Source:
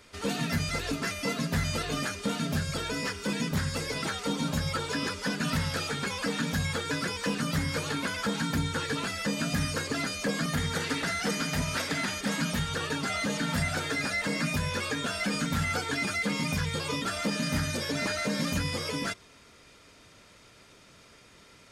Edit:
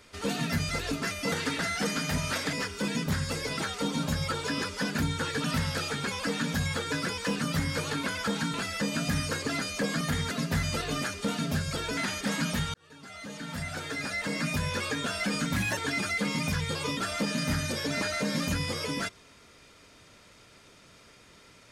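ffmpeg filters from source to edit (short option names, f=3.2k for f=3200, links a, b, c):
-filter_complex "[0:a]asplit=11[a][b][c][d][e][f][g][h][i][j][k];[a]atrim=end=1.322[l];[b]atrim=start=10.758:end=11.972[m];[c]atrim=start=2.978:end=5.432[n];[d]atrim=start=8.528:end=8.992[o];[e]atrim=start=5.428:end=8.532[p];[f]atrim=start=8.988:end=10.762[q];[g]atrim=start=1.318:end=2.982[r];[h]atrim=start=11.968:end=12.74,asetpts=PTS-STARTPTS,afade=t=out:st=0.768:d=0.004:c=hsin[s];[i]atrim=start=12.74:end=15.564,asetpts=PTS-STARTPTS,afade=t=in:d=1.91[t];[j]atrim=start=15.56:end=15.82,asetpts=PTS-STARTPTS,asetrate=53802,aresample=44100,atrim=end_sample=9398,asetpts=PTS-STARTPTS[u];[k]atrim=start=15.816[v];[l][m]acrossfade=d=0.004:c1=hsin:c2=hsin[w];[w][n]acrossfade=d=0.004:c1=hsin:c2=hsin[x];[x][o]acrossfade=d=0.004:c1=hsin:c2=hsin[y];[y][p]acrossfade=d=0.004:c1=hsin:c2=hsin[z];[z][q]acrossfade=d=0.004:c1=hsin:c2=hsin[aa];[aa][r]acrossfade=d=0.004:c1=hsin:c2=hsin[ab];[s][t]concat=n=2:v=0:a=1[ac];[ab][ac]acrossfade=d=0.004:c1=hsin:c2=hsin[ad];[ad][u]acrossfade=d=0.004:c1=hsin:c2=hsin[ae];[ae][v]acrossfade=d=0.004:c1=hsin:c2=hsin"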